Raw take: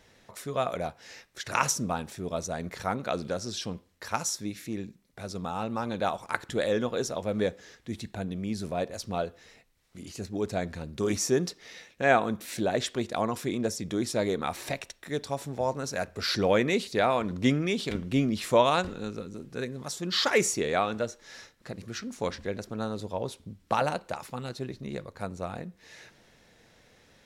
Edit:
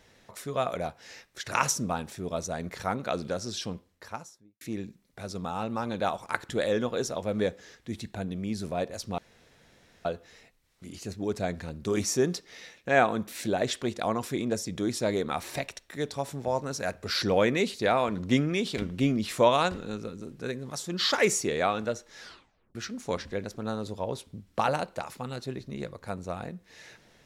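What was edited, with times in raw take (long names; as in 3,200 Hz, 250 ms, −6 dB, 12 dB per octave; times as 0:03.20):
0:03.67–0:04.61: fade out and dull
0:09.18: splice in room tone 0.87 s
0:21.33: tape stop 0.55 s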